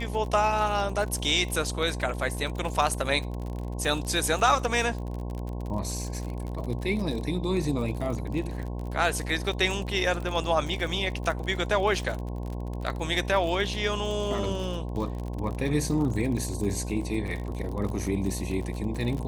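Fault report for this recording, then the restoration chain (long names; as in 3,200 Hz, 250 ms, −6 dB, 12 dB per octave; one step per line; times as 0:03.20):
mains buzz 60 Hz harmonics 18 −33 dBFS
surface crackle 42 per second −32 dBFS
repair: click removal
hum removal 60 Hz, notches 18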